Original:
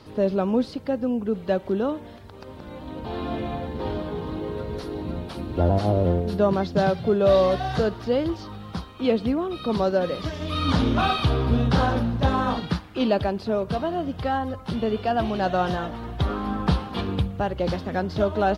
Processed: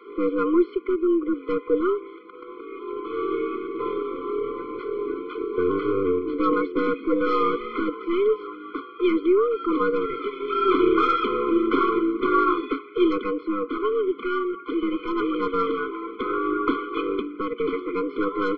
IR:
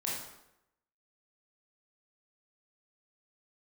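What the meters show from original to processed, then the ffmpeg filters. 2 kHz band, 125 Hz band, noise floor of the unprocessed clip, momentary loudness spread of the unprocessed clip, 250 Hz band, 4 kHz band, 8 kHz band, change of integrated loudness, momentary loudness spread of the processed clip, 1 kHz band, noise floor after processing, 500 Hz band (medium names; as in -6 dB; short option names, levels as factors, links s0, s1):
+0.5 dB, -20.5 dB, -42 dBFS, 10 LU, +1.5 dB, -6.0 dB, no reading, +0.5 dB, 10 LU, +1.0 dB, -42 dBFS, +1.0 dB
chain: -af "highpass=f=230:t=q:w=0.5412,highpass=f=230:t=q:w=1.307,lowpass=f=2700:t=q:w=0.5176,lowpass=f=2700:t=q:w=0.7071,lowpass=f=2700:t=q:w=1.932,afreqshift=100,aeval=exprs='0.335*(cos(1*acos(clip(val(0)/0.335,-1,1)))-cos(1*PI/2))+0.00211*(cos(2*acos(clip(val(0)/0.335,-1,1)))-cos(2*PI/2))+0.0106*(cos(6*acos(clip(val(0)/0.335,-1,1)))-cos(6*PI/2))':c=same,afftfilt=real='re*eq(mod(floor(b*sr/1024/500),2),0)':imag='im*eq(mod(floor(b*sr/1024/500),2),0)':win_size=1024:overlap=0.75,volume=2.24"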